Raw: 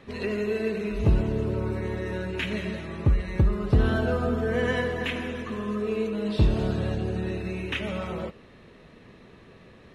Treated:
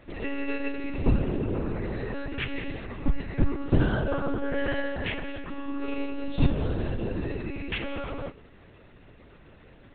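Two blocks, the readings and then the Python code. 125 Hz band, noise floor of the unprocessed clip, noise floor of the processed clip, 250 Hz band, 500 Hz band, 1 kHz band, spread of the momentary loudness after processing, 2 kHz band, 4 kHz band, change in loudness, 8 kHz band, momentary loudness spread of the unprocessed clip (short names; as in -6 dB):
-4.0 dB, -51 dBFS, -53 dBFS, -1.5 dB, -4.5 dB, -1.5 dB, 9 LU, -2.0 dB, -2.5 dB, -3.0 dB, n/a, 8 LU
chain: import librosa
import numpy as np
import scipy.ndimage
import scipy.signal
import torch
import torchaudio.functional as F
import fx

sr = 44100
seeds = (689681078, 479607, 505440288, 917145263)

y = fx.comb_fb(x, sr, f0_hz=300.0, decay_s=0.33, harmonics='odd', damping=0.0, mix_pct=70)
y = fx.echo_feedback(y, sr, ms=199, feedback_pct=34, wet_db=-23.5)
y = fx.lpc_monotone(y, sr, seeds[0], pitch_hz=280.0, order=10)
y = y * librosa.db_to_amplitude(8.5)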